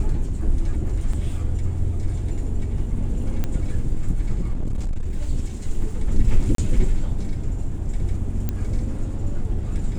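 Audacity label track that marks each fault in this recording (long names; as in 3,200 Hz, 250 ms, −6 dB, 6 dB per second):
1.130000	1.130000	drop-out 4.3 ms
3.440000	3.440000	click −13 dBFS
4.520000	5.120000	clipping −20 dBFS
6.550000	6.580000	drop-out 33 ms
8.490000	8.490000	click −12 dBFS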